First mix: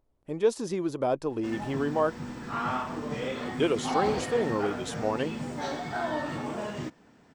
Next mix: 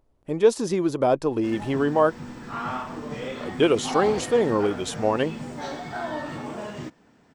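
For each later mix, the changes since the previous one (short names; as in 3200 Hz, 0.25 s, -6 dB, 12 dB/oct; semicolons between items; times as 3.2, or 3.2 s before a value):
speech +6.5 dB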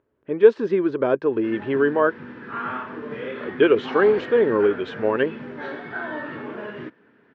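master: add speaker cabinet 130–3100 Hz, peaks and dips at 160 Hz -5 dB, 410 Hz +7 dB, 750 Hz -8 dB, 1600 Hz +9 dB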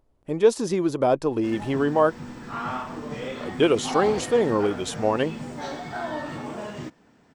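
master: remove speaker cabinet 130–3100 Hz, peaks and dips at 160 Hz -5 dB, 410 Hz +7 dB, 750 Hz -8 dB, 1600 Hz +9 dB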